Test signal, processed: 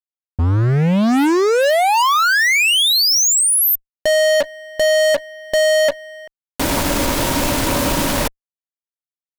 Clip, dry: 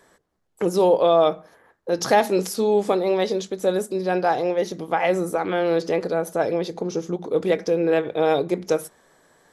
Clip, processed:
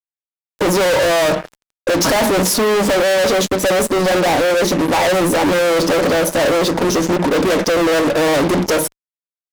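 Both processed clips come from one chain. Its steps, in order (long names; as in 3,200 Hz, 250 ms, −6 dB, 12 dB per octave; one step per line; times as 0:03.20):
hollow resonant body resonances 280/570/940 Hz, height 12 dB, ringing for 60 ms
fuzz pedal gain 36 dB, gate −42 dBFS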